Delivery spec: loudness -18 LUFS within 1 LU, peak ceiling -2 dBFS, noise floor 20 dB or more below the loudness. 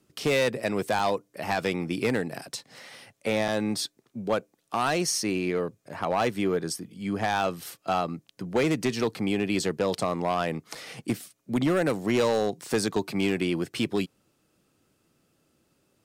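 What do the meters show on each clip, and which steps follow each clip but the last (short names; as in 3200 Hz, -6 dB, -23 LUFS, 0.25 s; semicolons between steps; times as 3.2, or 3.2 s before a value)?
clipped 1.2%; flat tops at -18.0 dBFS; dropouts 3; longest dropout 4.5 ms; loudness -28.0 LUFS; peak -18.0 dBFS; loudness target -18.0 LUFS
-> clip repair -18 dBFS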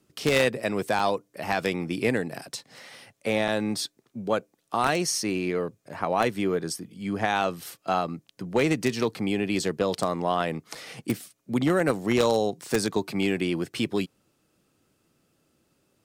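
clipped 0.0%; dropouts 3; longest dropout 4.5 ms
-> interpolate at 0.99/3.48/10.75, 4.5 ms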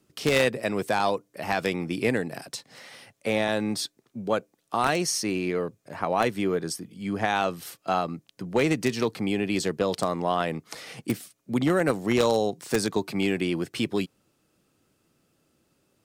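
dropouts 0; loudness -27.0 LUFS; peak -9.0 dBFS; loudness target -18.0 LUFS
-> gain +9 dB; limiter -2 dBFS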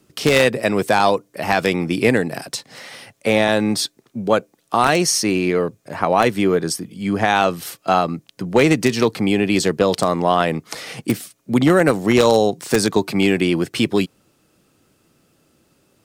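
loudness -18.5 LUFS; peak -2.0 dBFS; noise floor -62 dBFS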